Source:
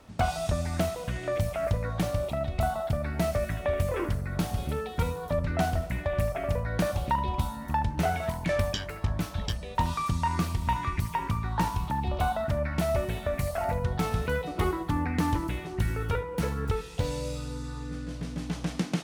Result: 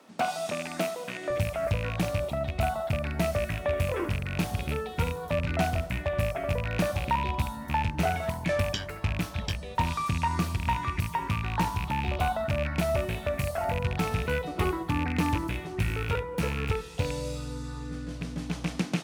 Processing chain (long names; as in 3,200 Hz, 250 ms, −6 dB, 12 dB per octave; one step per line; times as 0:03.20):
loose part that buzzes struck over −28 dBFS, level −23 dBFS
high-pass filter 200 Hz 24 dB per octave, from 0:01.30 51 Hz